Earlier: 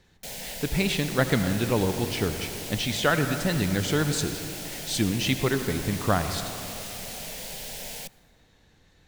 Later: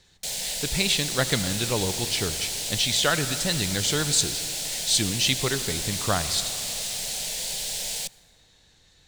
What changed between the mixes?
speech: send −6.0 dB
master: add octave-band graphic EQ 250/4,000/8,000 Hz −4/+8/+10 dB

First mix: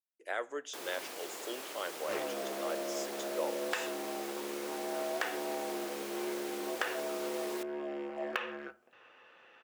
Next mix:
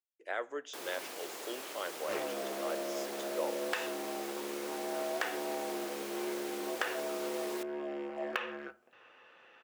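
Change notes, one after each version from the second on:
speech: add high-frequency loss of the air 76 metres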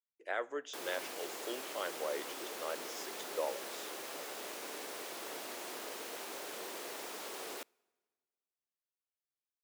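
second sound: muted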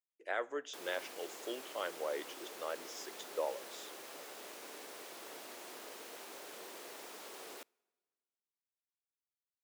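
background −5.5 dB

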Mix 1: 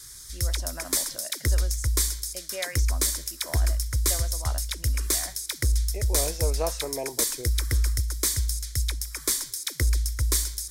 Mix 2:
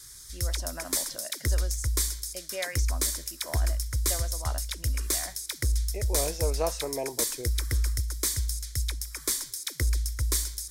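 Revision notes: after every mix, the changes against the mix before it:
background −3.0 dB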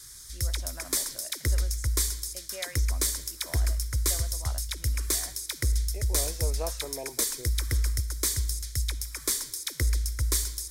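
speech −6.0 dB
reverb: on, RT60 1.3 s

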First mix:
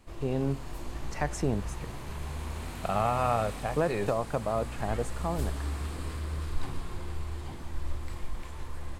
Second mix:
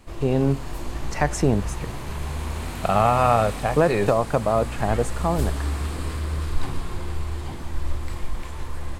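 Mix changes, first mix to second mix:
speech +9.0 dB
background +7.5 dB

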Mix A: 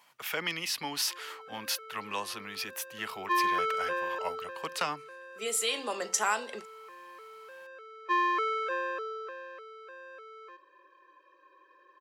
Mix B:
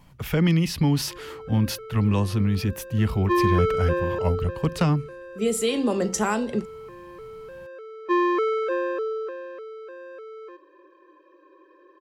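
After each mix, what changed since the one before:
master: remove high-pass filter 890 Hz 12 dB per octave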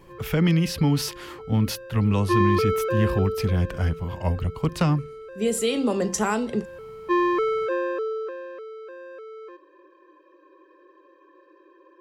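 background: entry −1.00 s

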